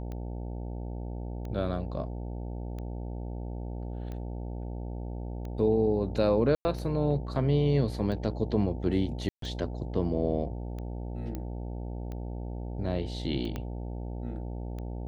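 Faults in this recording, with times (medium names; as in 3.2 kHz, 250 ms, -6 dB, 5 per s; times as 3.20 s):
buzz 60 Hz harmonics 15 -36 dBFS
tick 45 rpm -28 dBFS
6.55–6.65 s: dropout 100 ms
9.29–9.42 s: dropout 133 ms
11.35 s: pop -22 dBFS
13.56 s: pop -21 dBFS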